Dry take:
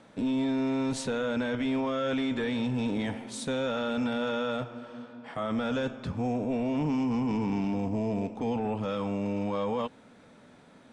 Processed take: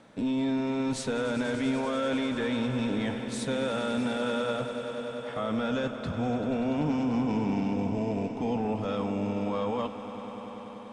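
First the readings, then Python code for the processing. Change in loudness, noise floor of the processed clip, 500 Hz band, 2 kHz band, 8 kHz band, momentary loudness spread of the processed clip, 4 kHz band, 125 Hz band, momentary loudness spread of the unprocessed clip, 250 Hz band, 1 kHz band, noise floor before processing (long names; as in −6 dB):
+0.5 dB, −41 dBFS, +1.0 dB, +1.0 dB, +1.0 dB, 7 LU, +1.0 dB, +0.5 dB, 6 LU, +0.5 dB, +1.0 dB, −55 dBFS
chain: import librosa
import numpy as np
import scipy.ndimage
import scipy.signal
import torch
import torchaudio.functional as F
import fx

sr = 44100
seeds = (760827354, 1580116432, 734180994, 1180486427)

y = fx.echo_swell(x, sr, ms=97, loudest=5, wet_db=-15.0)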